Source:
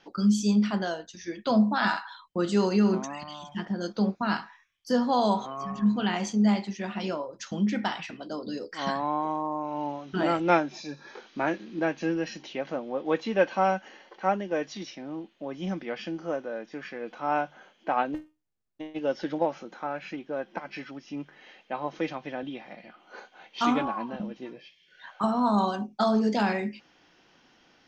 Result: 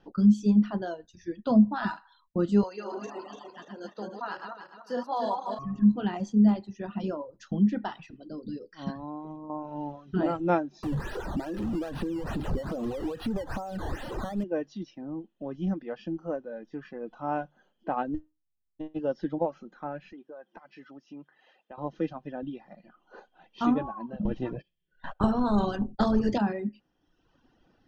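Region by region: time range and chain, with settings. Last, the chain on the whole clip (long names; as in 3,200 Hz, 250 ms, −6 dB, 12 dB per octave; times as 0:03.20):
0:02.63–0:05.59: feedback delay that plays each chunk backwards 146 ms, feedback 65%, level −2.5 dB + high-pass filter 600 Hz
0:08.08–0:09.50: linear-phase brick-wall low-pass 6,100 Hz + parametric band 880 Hz −9 dB 2.2 octaves + one half of a high-frequency compander encoder only
0:10.83–0:14.44: converter with a step at zero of −26.5 dBFS + downward compressor 16 to 1, threshold −27 dBFS + sample-and-hold swept by an LFO 12× 2.4 Hz
0:20.12–0:21.78: high-pass filter 600 Hz 6 dB per octave + downward compressor 2.5 to 1, threshold −41 dBFS
0:24.25–0:26.38: spectral tilt −2.5 dB per octave + noise gate −51 dBFS, range −21 dB + every bin compressed towards the loudest bin 2 to 1
whole clip: reverb reduction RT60 1.1 s; spectral tilt −3.5 dB per octave; notch filter 2,200 Hz, Q 5.1; level −4.5 dB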